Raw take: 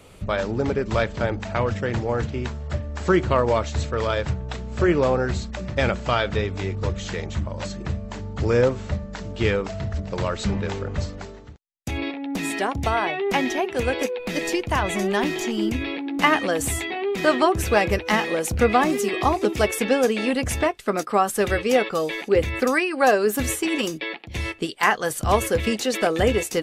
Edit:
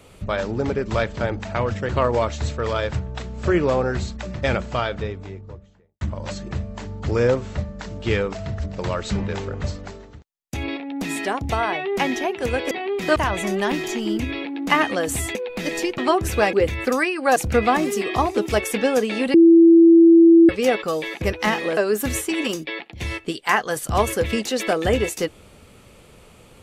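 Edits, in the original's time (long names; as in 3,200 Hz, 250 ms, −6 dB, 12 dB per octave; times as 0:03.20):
0:01.89–0:03.23: remove
0:05.75–0:07.35: fade out and dull
0:14.05–0:14.68: swap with 0:16.87–0:17.32
0:17.87–0:18.43: swap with 0:22.28–0:23.11
0:20.41–0:21.56: beep over 333 Hz −7 dBFS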